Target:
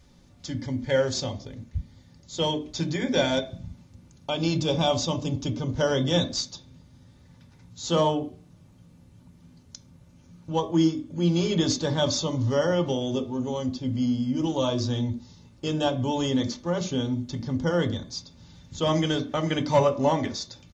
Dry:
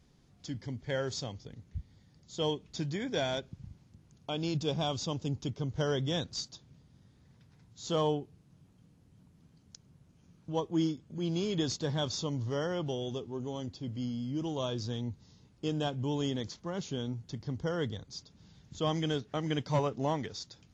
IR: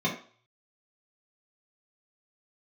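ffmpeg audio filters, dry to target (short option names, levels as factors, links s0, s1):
-filter_complex "[0:a]aecho=1:1:3.4:0.43,asplit=2[s0][s1];[1:a]atrim=start_sample=2205[s2];[s1][s2]afir=irnorm=-1:irlink=0,volume=0.158[s3];[s0][s3]amix=inputs=2:normalize=0,volume=2.66"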